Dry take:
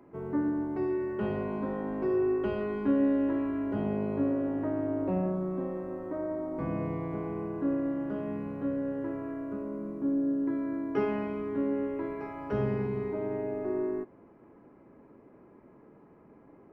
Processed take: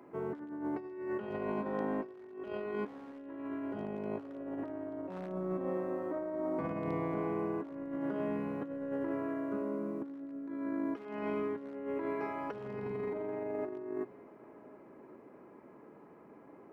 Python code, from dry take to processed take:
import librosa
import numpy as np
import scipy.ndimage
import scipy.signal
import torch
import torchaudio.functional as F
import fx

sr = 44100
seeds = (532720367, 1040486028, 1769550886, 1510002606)

y = np.minimum(x, 2.0 * 10.0 ** (-23.0 / 20.0) - x)
y = fx.highpass(y, sr, hz=310.0, slope=6)
y = fx.over_compress(y, sr, threshold_db=-37.0, ratio=-0.5)
y = y + 10.0 ** (-21.5 / 20.0) * np.pad(y, (int(1115 * sr / 1000.0), 0))[:len(y)]